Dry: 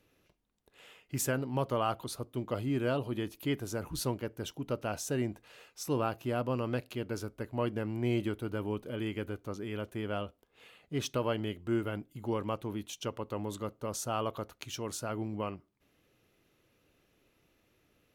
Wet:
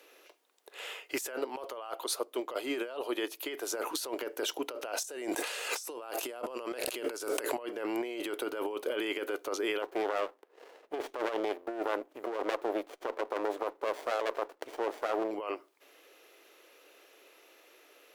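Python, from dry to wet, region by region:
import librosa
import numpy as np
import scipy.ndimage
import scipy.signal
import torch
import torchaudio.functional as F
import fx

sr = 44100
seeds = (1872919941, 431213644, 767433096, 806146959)

y = fx.chain(x, sr, fx.low_shelf(hz=130.0, db=-9.0),
    fx.upward_expand(threshold_db=-41.0, expansion=1.5), at=(1.21, 3.77))
y = fx.chain(y, sr, fx.peak_eq(hz=8700.0, db=9.0, octaves=1.1),
    fx.env_flatten(amount_pct=70), at=(5.04, 7.63))
y = fx.chain(y, sr, fx.peak_eq(hz=5600.0, db=-14.5, octaves=2.5),
    fx.running_max(window=33), at=(9.82, 15.31))
y = scipy.signal.sosfilt(scipy.signal.cheby2(4, 40, 190.0, 'highpass', fs=sr, output='sos'), y)
y = fx.over_compress(y, sr, threshold_db=-44.0, ratio=-1.0)
y = F.gain(torch.from_numpy(y), 8.5).numpy()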